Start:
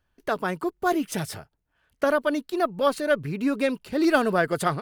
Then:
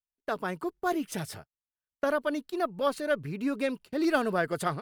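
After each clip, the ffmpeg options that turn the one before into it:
-af "agate=range=-28dB:threshold=-39dB:ratio=16:detection=peak,volume=-5.5dB"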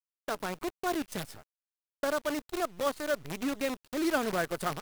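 -af "acrusher=bits=6:dc=4:mix=0:aa=0.000001,volume=-3dB"

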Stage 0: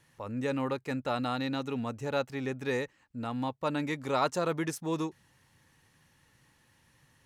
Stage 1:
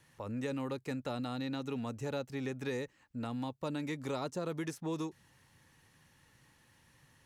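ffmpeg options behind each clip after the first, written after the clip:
-filter_complex "[0:a]acrossover=split=490|3700[a][b][c];[a]acompressor=threshold=-36dB:ratio=4[d];[b]acompressor=threshold=-44dB:ratio=4[e];[c]acompressor=threshold=-51dB:ratio=4[f];[d][e][f]amix=inputs=3:normalize=0"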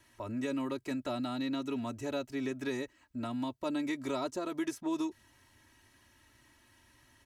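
-af "aecho=1:1:3.1:0.86"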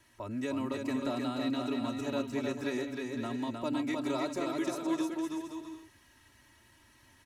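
-af "aecho=1:1:310|511.5|642.5|727.6|782.9:0.631|0.398|0.251|0.158|0.1"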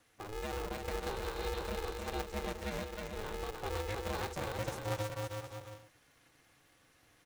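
-af "aeval=exprs='val(0)*sgn(sin(2*PI*210*n/s))':c=same,volume=-5dB"

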